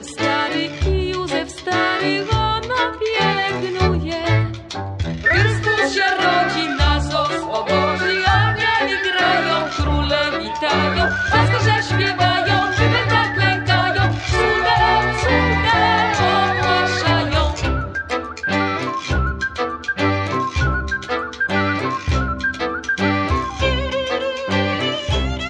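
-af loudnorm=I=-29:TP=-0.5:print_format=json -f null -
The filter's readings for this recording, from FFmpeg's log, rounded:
"input_i" : "-18.2",
"input_tp" : "-3.7",
"input_lra" : "4.4",
"input_thresh" : "-28.2",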